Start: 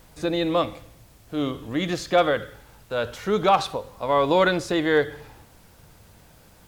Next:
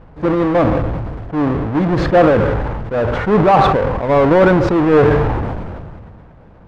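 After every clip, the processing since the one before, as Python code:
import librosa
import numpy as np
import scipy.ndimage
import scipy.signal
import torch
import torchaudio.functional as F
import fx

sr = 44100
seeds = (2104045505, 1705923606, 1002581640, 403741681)

y = fx.halfwave_hold(x, sr)
y = scipy.signal.sosfilt(scipy.signal.butter(2, 1300.0, 'lowpass', fs=sr, output='sos'), y)
y = fx.sustainer(y, sr, db_per_s=26.0)
y = y * 10.0 ** (4.5 / 20.0)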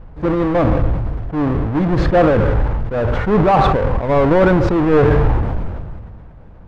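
y = fx.low_shelf(x, sr, hz=80.0, db=12.0)
y = y * 10.0 ** (-2.5 / 20.0)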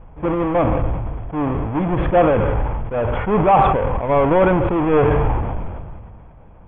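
y = scipy.signal.sosfilt(scipy.signal.cheby1(6, 6, 3400.0, 'lowpass', fs=sr, output='sos'), x)
y = y * 10.0 ** (1.5 / 20.0)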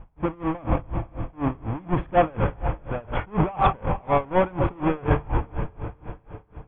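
y = fx.peak_eq(x, sr, hz=490.0, db=-5.0, octaves=0.77)
y = fx.echo_diffused(y, sr, ms=491, feedback_pct=43, wet_db=-12.5)
y = y * 10.0 ** (-26 * (0.5 - 0.5 * np.cos(2.0 * np.pi * 4.1 * np.arange(len(y)) / sr)) / 20.0)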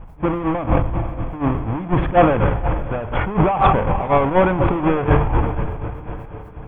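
y = fx.sustainer(x, sr, db_per_s=56.0)
y = y * 10.0 ** (4.5 / 20.0)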